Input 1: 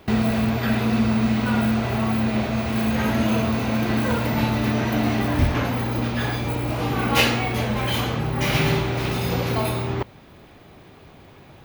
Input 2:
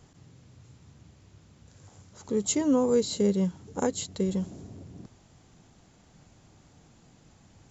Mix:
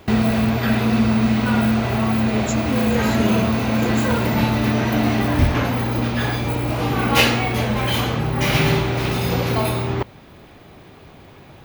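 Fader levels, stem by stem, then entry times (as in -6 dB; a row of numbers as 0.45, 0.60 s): +3.0, -2.5 dB; 0.00, 0.00 s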